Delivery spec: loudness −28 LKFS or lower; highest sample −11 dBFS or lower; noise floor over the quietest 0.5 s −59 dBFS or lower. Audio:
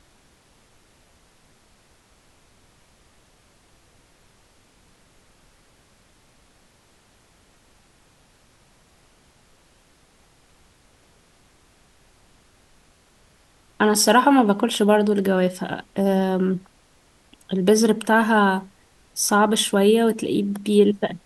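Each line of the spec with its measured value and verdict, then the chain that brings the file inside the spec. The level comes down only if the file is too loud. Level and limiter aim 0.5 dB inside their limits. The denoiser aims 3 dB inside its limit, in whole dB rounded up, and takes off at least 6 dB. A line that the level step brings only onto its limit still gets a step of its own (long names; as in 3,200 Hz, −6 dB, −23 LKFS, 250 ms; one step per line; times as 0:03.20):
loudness −19.5 LKFS: out of spec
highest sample −3.5 dBFS: out of spec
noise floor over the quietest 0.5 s −58 dBFS: out of spec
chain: level −9 dB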